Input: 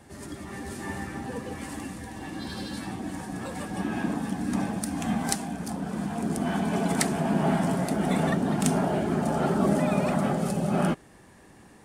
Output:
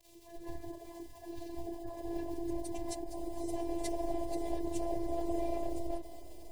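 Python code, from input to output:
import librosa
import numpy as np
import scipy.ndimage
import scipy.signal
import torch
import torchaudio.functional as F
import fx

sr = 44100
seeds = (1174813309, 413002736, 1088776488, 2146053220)

p1 = fx.wiener(x, sr, points=15)
p2 = scipy.signal.sosfilt(scipy.signal.butter(4, 90.0, 'highpass', fs=sr, output='sos'), p1)
p3 = fx.riaa(p2, sr, side='playback')
p4 = fx.noise_reduce_blind(p3, sr, reduce_db=18)
p5 = fx.high_shelf(p4, sr, hz=3400.0, db=9.5)
p6 = fx.over_compress(p5, sr, threshold_db=-25.0, ratio=-1.0)
p7 = p5 + (p6 * librosa.db_to_amplitude(-1.5))
p8 = fx.dmg_crackle(p7, sr, seeds[0], per_s=170.0, level_db=-29.0)
p9 = fx.stretch_vocoder_free(p8, sr, factor=0.55)
p10 = fx.robotise(p9, sr, hz=340.0)
p11 = fx.fixed_phaser(p10, sr, hz=590.0, stages=4)
p12 = fx.echo_diffused(p11, sr, ms=568, feedback_pct=59, wet_db=-13)
p13 = fx.end_taper(p12, sr, db_per_s=120.0)
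y = p13 * librosa.db_to_amplitude(-6.0)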